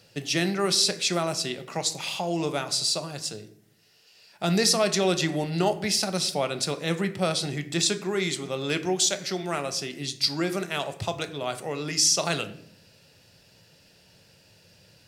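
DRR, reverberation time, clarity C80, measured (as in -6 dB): 9.0 dB, 0.70 s, 17.0 dB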